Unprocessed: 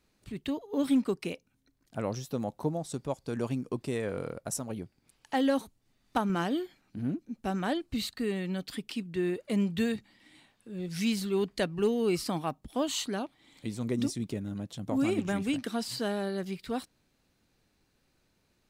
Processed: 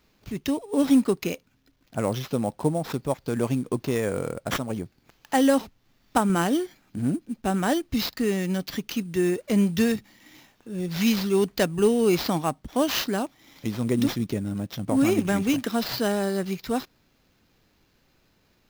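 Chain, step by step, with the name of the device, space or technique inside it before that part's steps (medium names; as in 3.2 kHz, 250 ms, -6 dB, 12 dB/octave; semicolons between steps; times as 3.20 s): early companding sampler (sample-rate reducer 9.1 kHz, jitter 0%; companded quantiser 8-bit); trim +7 dB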